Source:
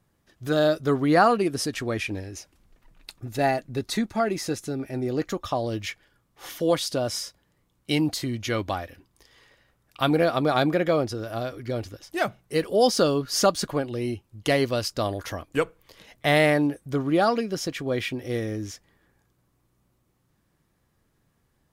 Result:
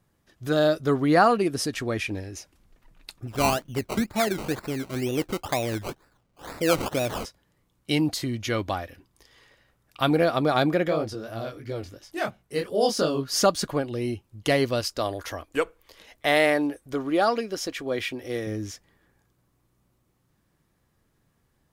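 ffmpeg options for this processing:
ffmpeg -i in.wav -filter_complex "[0:a]asplit=3[link_01][link_02][link_03];[link_01]afade=type=out:start_time=3.27:duration=0.02[link_04];[link_02]acrusher=samples=20:mix=1:aa=0.000001:lfo=1:lforange=12:lforate=2.1,afade=type=in:start_time=3.27:duration=0.02,afade=type=out:start_time=7.24:duration=0.02[link_05];[link_03]afade=type=in:start_time=7.24:duration=0.02[link_06];[link_04][link_05][link_06]amix=inputs=3:normalize=0,asplit=3[link_07][link_08][link_09];[link_07]afade=type=out:start_time=10.88:duration=0.02[link_10];[link_08]flanger=delay=18:depth=5.6:speed=2.9,afade=type=in:start_time=10.88:duration=0.02,afade=type=out:start_time=13.26:duration=0.02[link_11];[link_09]afade=type=in:start_time=13.26:duration=0.02[link_12];[link_10][link_11][link_12]amix=inputs=3:normalize=0,asettb=1/sr,asplit=3[link_13][link_14][link_15];[link_13]atrim=end=14.814[link_16];[link_14]atrim=start=14.81:end=18.47,asetpts=PTS-STARTPTS,afade=type=in:duration=0.004:curve=qsin,afade=type=out:start_time=3.656:duration=0.004:curve=qsin,equalizer=frequency=150:width=1.5:gain=-12.5[link_17];[link_15]atrim=start=18.466[link_18];[link_16][link_17]acrossfade=duration=0.004:curve1=hsin:curve2=qsin[link_19];[link_19][link_18]acrossfade=duration=0.004:curve1=qsin:curve2=hsin" out.wav

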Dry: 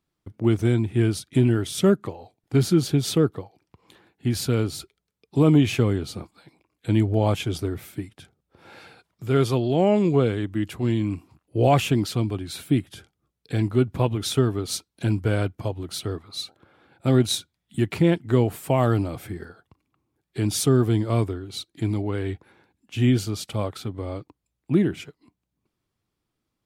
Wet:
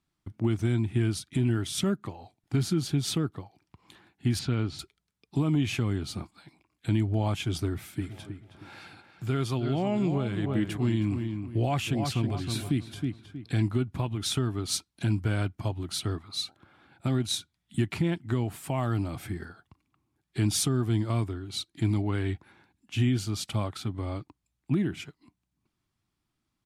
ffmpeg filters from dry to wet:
ffmpeg -i in.wav -filter_complex "[0:a]asettb=1/sr,asplit=3[link_01][link_02][link_03];[link_01]atrim=end=4.394[link_04];[link_02]atrim=start=4.39:end=4.79,asetpts=PTS-STARTPTS,afade=type=in:duration=0.004:curve=qsin,afade=type=out:start_time=0.396:duration=0.004:curve=qsin,lowpass=3800[link_05];[link_03]atrim=start=4.786[link_06];[link_04][link_05]acrossfade=duration=0.004:curve1=hsin:curve2=qsin[link_07];[link_07][link_06]acrossfade=duration=0.004:curve1=qsin:curve2=hsin,asplit=3[link_08][link_09][link_10];[link_08]afade=type=out:start_time=8:duration=0.02[link_11];[link_09]asplit=2[link_12][link_13];[link_13]adelay=317,lowpass=frequency=2800:poles=1,volume=-8.5dB,asplit=2[link_14][link_15];[link_15]adelay=317,lowpass=frequency=2800:poles=1,volume=0.32,asplit=2[link_16][link_17];[link_17]adelay=317,lowpass=frequency=2800:poles=1,volume=0.32,asplit=2[link_18][link_19];[link_19]adelay=317,lowpass=frequency=2800:poles=1,volume=0.32[link_20];[link_12][link_14][link_16][link_18][link_20]amix=inputs=5:normalize=0,afade=type=in:start_time=8:duration=0.02,afade=type=out:start_time=13.56:duration=0.02[link_21];[link_10]afade=type=in:start_time=13.56:duration=0.02[link_22];[link_11][link_21][link_22]amix=inputs=3:normalize=0,alimiter=limit=-15.5dB:level=0:latency=1:release=350,lowpass=12000,equalizer=frequency=480:width_type=o:width=0.6:gain=-10.5" out.wav

